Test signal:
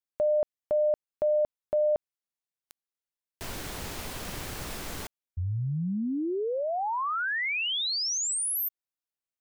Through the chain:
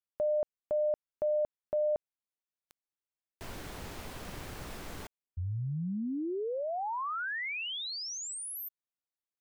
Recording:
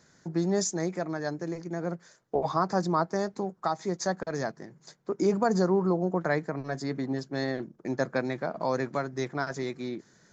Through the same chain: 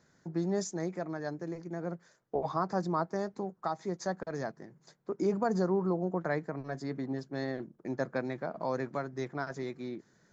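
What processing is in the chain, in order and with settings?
high-shelf EQ 3,000 Hz −6.5 dB
level −4.5 dB

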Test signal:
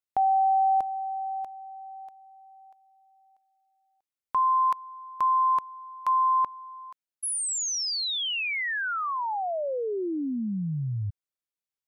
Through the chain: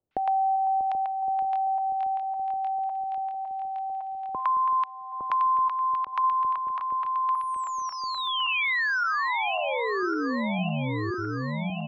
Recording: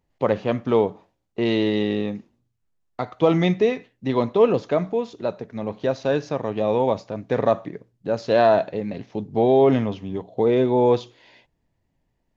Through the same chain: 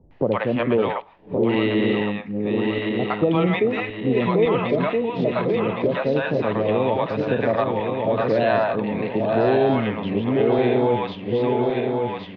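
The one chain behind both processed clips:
feedback delay that plays each chunk backwards 557 ms, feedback 63%, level −5 dB
low-pass filter 2,900 Hz 24 dB per octave
high-shelf EQ 2,200 Hz +9.5 dB
multiband delay without the direct sound lows, highs 110 ms, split 640 Hz
multiband upward and downward compressor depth 70%

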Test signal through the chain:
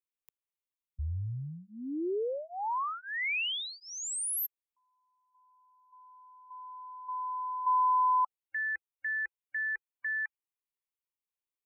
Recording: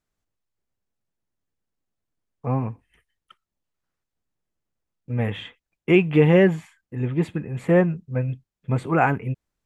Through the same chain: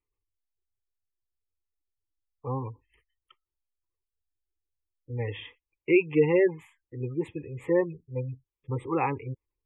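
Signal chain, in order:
phaser with its sweep stopped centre 1,000 Hz, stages 8
gate on every frequency bin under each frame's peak −25 dB strong
level −3 dB

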